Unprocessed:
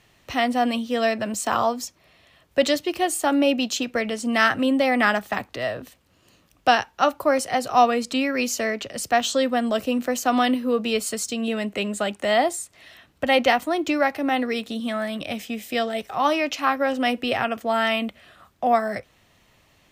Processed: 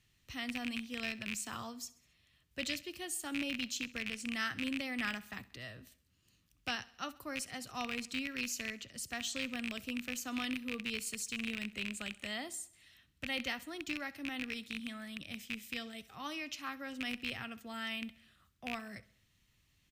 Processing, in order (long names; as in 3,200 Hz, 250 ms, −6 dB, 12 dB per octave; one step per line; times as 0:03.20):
loose part that buzzes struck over −30 dBFS, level −10 dBFS
guitar amp tone stack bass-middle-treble 6-0-2
on a send: repeating echo 66 ms, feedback 53%, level −20 dB
on the sum: level +3 dB